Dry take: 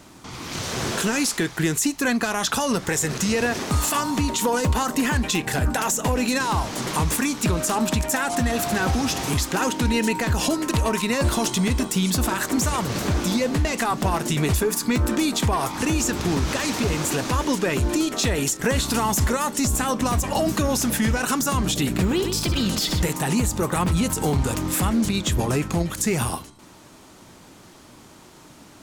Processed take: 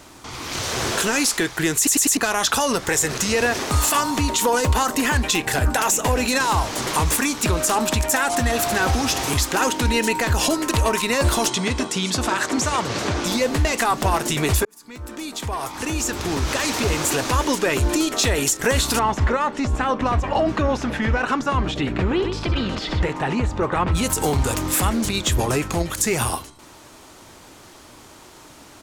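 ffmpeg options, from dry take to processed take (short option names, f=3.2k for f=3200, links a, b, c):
-filter_complex "[0:a]asplit=2[a][b];[b]afade=t=in:st=5.33:d=0.01,afade=t=out:st=6.05:d=0.01,aecho=0:1:580|1160|1740:0.141254|0.0423761|0.0127128[c];[a][c]amix=inputs=2:normalize=0,asettb=1/sr,asplit=3[d][e][f];[d]atrim=end=11.494[g];[e]atrim=start=11.49:end=13.26,asetpts=PTS-STARTPTS,afade=t=in:d=0.004:c=qsin,afade=t=out:st=1.766:d=0.004:c=qsin,highpass=100,lowpass=7k[h];[f]atrim=start=13.256[i];[g][h]acrossfade=d=0.004:c1=hsin:c2=qsin[j];[j][i]acrossfade=d=0.004:c1=qsin:c2=hsin,asettb=1/sr,asplit=3[k][l][m];[k]atrim=end=18.994[n];[l]atrim=start=18.99:end=23.95,asetpts=PTS-STARTPTS,afade=t=in:d=0.004:c=qsin,afade=t=out:st=4.956:d=0.004:c=qsin,lowpass=2.5k[o];[m]atrim=start=23.946[p];[n][o]acrossfade=d=0.004:c1=hsin:c2=qsin[q];[q][p]acrossfade=d=0.004:c1=qsin:c2=hsin,asplit=6[r][s][t][u][v][w];[r]atrim=end=1.872[x];[s]atrim=start=1.768:end=1.872[y];[t]atrim=start=1.768:end=1.872[z];[u]atrim=start=1.768:end=1.872[aa];[v]atrim=start=2.168:end=14.65,asetpts=PTS-STARTPTS,afade=t=out:st=12.478:d=0.004:c=hsin[ab];[w]atrim=start=14.65,asetpts=PTS-STARTPTS,afade=t=in:d=2.19[ac];[x][y]acrossfade=d=0.004:c1=hsin:c2=hsin[ad];[ad][z]acrossfade=d=0.004:c1=hsin:c2=hsin[ae];[ae][aa]acrossfade=d=0.004:c1=hsin:c2=hsin[af];[ab][ac]concat=n=2:v=0:a=1[ag];[af][ag]acrossfade=d=0.004:c1=hsin:c2=hsin,equalizer=f=180:w=1.2:g=-8.5,volume=4dB"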